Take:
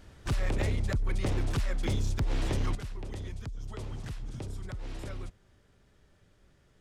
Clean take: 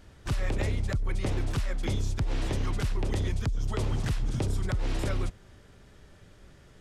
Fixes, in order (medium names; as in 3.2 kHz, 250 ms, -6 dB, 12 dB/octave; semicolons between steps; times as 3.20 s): clip repair -23.5 dBFS; gain correction +10 dB, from 2.75 s